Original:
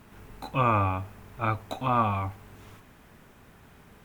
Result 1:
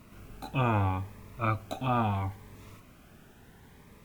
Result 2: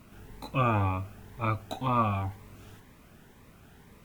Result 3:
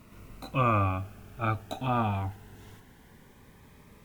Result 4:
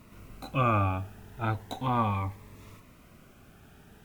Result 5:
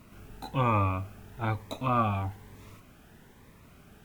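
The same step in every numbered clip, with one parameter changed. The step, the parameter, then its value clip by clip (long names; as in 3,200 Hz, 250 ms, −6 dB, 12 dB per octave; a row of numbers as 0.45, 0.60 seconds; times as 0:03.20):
phaser whose notches keep moving one way, speed: 0.73, 2, 0.22, 0.36, 1.1 Hertz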